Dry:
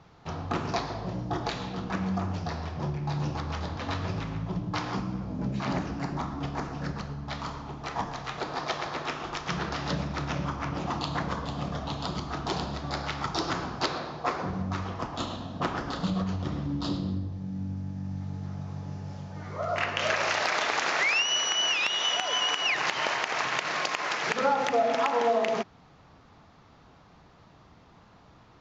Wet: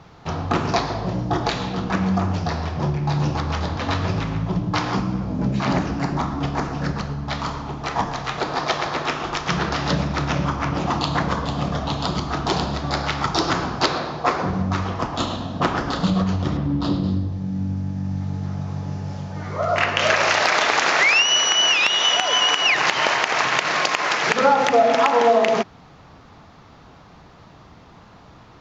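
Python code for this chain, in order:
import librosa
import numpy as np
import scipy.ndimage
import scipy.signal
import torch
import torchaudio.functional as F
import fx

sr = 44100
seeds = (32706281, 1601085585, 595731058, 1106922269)

y = fx.lowpass(x, sr, hz=2500.0, slope=6, at=(16.57, 17.04))
y = y * 10.0 ** (9.0 / 20.0)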